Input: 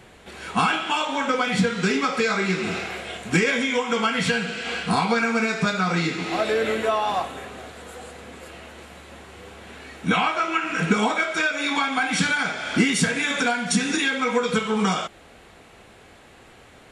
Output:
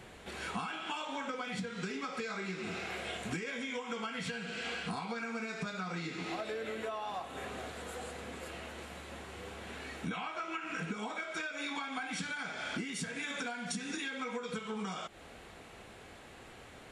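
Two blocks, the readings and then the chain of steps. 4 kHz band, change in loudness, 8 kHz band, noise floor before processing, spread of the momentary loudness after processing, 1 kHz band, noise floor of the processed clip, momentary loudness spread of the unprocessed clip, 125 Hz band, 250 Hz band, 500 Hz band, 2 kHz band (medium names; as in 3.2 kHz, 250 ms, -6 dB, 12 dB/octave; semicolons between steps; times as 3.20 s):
-14.5 dB, -16.5 dB, -15.0 dB, -49 dBFS, 9 LU, -16.0 dB, -53 dBFS, 19 LU, -16.0 dB, -16.0 dB, -15.5 dB, -15.5 dB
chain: compression 12:1, threshold -32 dBFS, peak gain reduction 18.5 dB; trim -3.5 dB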